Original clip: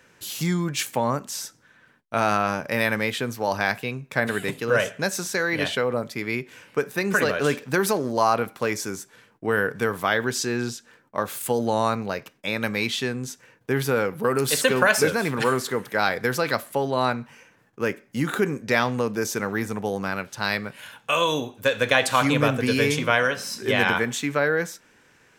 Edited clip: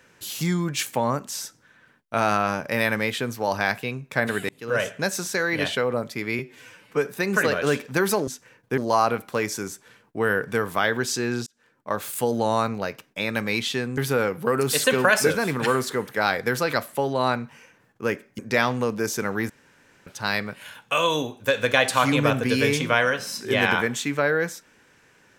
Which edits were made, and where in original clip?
4.49–5.03 s: fade in equal-power
6.39–6.84 s: stretch 1.5×
10.74–11.25 s: fade in
13.25–13.75 s: move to 8.05 s
18.16–18.56 s: delete
19.67–20.24 s: room tone

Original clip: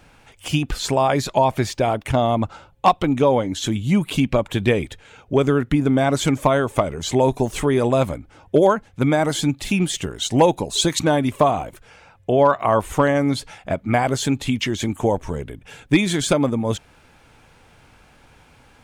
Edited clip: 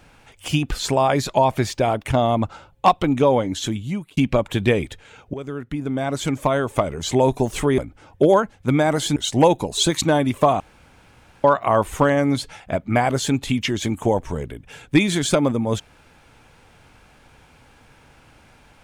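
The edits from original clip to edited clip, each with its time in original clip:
3.56–4.17 s: fade out
5.34–7.01 s: fade in, from -16.5 dB
7.78–8.11 s: delete
9.49–10.14 s: delete
11.58–12.42 s: room tone

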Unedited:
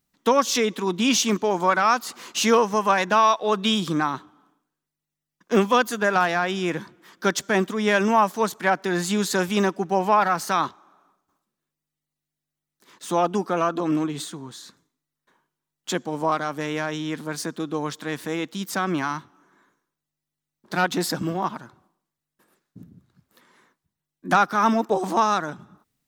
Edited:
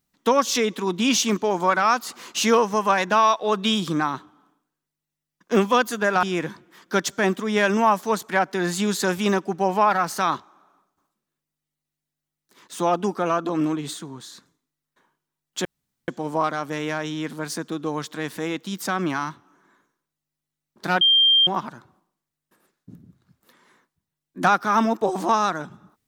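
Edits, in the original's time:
6.23–6.54 s: delete
15.96 s: insert room tone 0.43 s
20.89–21.35 s: bleep 3.18 kHz -13 dBFS

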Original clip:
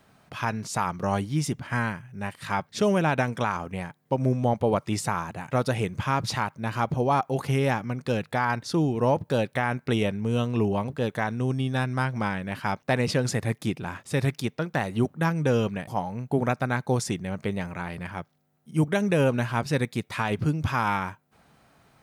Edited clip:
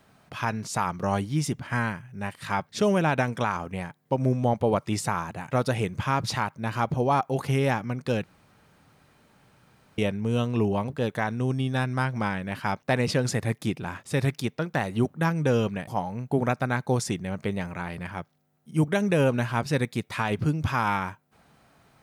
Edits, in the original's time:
8.24–9.98 s: room tone

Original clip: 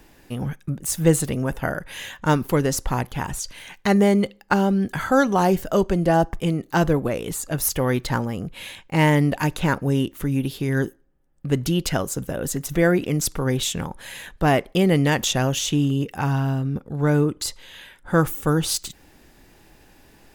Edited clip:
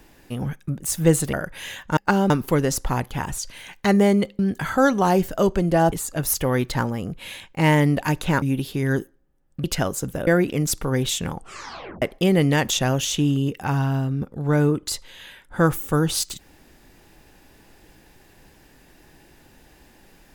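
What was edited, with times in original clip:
1.33–1.67 s: delete
4.40–4.73 s: move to 2.31 s
6.26–7.27 s: delete
9.77–10.28 s: delete
11.50–11.78 s: delete
12.41–12.81 s: delete
13.87 s: tape stop 0.69 s

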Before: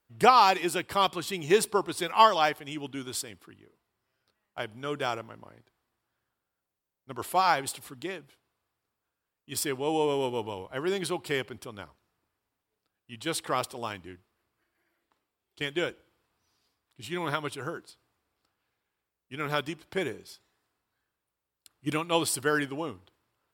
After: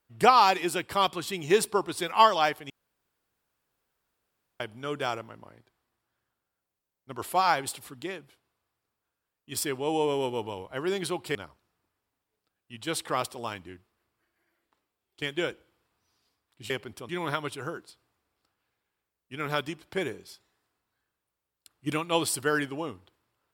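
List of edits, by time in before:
2.70–4.60 s: room tone
11.35–11.74 s: move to 17.09 s

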